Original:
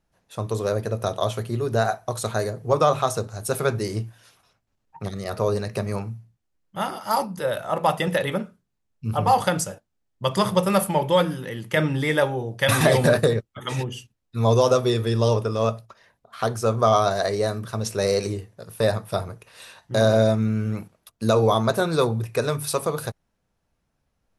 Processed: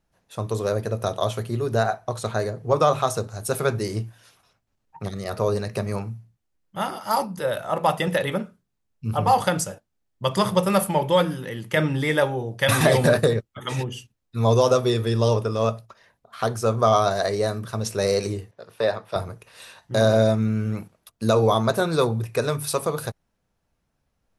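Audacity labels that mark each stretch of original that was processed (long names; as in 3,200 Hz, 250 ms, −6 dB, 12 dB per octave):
1.820000	2.750000	high-shelf EQ 6,600 Hz → 9,600 Hz −11.5 dB
18.510000	19.160000	three-way crossover with the lows and the highs turned down lows −13 dB, under 300 Hz, highs −17 dB, over 5,100 Hz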